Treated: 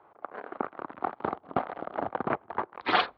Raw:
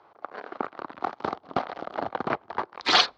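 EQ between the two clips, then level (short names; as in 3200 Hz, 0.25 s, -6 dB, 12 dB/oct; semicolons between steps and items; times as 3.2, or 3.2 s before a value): LPF 3500 Hz 12 dB/oct; air absorption 350 m; 0.0 dB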